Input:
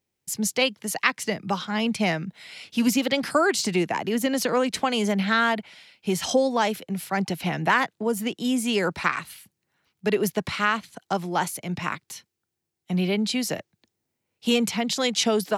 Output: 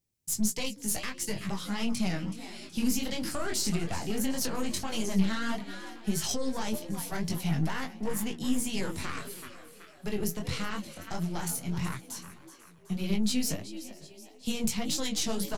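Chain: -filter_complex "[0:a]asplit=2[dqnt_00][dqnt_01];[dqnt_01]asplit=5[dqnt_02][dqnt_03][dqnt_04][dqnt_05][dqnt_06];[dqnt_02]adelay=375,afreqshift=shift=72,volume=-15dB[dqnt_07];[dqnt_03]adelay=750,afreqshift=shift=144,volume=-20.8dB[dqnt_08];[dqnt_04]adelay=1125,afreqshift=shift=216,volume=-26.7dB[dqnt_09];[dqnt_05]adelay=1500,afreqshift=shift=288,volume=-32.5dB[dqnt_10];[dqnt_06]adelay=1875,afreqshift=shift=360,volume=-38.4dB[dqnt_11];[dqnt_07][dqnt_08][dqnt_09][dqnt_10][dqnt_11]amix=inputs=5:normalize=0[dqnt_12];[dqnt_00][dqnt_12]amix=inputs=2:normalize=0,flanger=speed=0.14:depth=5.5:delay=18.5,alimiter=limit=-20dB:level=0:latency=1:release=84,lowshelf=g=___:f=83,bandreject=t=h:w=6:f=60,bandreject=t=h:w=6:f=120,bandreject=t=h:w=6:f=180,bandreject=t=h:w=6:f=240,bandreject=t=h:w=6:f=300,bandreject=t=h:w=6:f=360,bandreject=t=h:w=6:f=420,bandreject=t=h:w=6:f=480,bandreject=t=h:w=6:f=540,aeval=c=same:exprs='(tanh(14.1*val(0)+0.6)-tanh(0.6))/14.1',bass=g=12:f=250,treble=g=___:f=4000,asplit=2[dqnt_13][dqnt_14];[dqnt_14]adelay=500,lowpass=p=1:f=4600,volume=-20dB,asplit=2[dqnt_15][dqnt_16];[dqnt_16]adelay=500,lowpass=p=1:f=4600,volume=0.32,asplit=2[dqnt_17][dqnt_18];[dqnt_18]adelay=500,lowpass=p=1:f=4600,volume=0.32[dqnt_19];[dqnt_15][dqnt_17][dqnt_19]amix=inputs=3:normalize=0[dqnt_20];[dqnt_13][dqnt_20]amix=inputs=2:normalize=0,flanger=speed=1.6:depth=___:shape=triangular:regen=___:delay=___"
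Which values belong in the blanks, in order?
6, 11, 8.3, 58, 5.3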